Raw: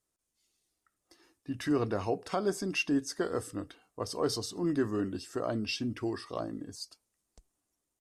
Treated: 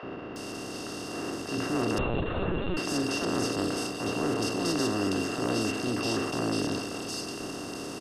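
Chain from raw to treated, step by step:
compressor on every frequency bin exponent 0.2
transient designer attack −8 dB, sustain +3 dB
three-band delay without the direct sound mids, lows, highs 30/360 ms, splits 530/2,600 Hz
0:01.98–0:02.77: linear-prediction vocoder at 8 kHz pitch kept
level −3.5 dB

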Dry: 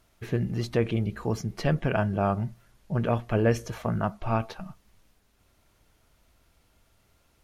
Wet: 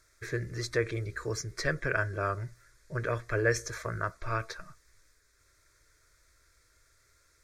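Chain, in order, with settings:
flat-topped bell 3,600 Hz +11.5 dB 2.8 octaves
phaser with its sweep stopped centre 790 Hz, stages 6
level −3 dB

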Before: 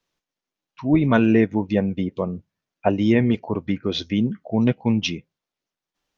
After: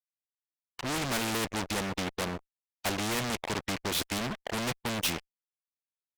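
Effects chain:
fuzz pedal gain 27 dB, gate −35 dBFS
every bin compressed towards the loudest bin 2 to 1
level −5 dB

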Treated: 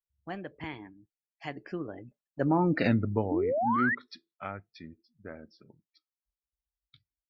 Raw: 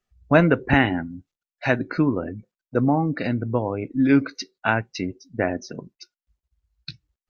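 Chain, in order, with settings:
source passing by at 0:02.83, 45 m/s, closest 9 metres
sound drawn into the spectrogram rise, 0:03.31–0:03.95, 280–2,000 Hz −28 dBFS

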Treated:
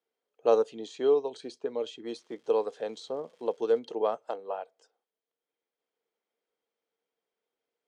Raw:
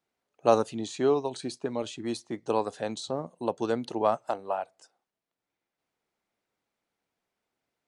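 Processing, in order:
0:02.14–0:03.78: surface crackle 410 per second −45 dBFS
band-pass filter 250–6,200 Hz
hollow resonant body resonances 460/3,200 Hz, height 13 dB, ringing for 45 ms
level −6.5 dB

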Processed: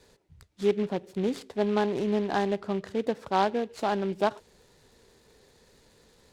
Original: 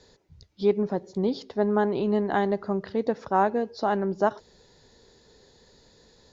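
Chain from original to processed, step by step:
short delay modulated by noise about 2,300 Hz, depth 0.033 ms
level −2.5 dB

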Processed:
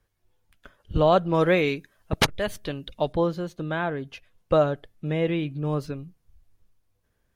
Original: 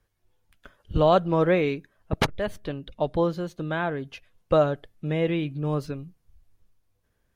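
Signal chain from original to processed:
0:01.34–0:03.13: high-shelf EQ 2,400 Hz +9.5 dB

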